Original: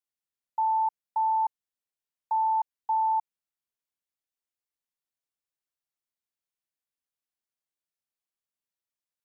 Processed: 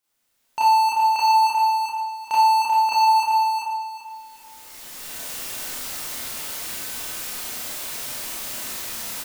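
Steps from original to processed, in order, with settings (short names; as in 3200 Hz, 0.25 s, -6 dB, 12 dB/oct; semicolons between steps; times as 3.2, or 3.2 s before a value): recorder AGC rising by 15 dB/s; dynamic EQ 680 Hz, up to -8 dB, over -43 dBFS, Q 2; in parallel at +2 dB: compressor, threshold -39 dBFS, peak gain reduction 11 dB; on the sum: soft clip -29.5 dBFS, distortion -13 dB; sample leveller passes 2; on a send: feedback echo 0.388 s, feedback 30%, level -5 dB; on the sum: Schroeder reverb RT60 0.64 s, combs from 25 ms, DRR -7.5 dB; gain +7 dB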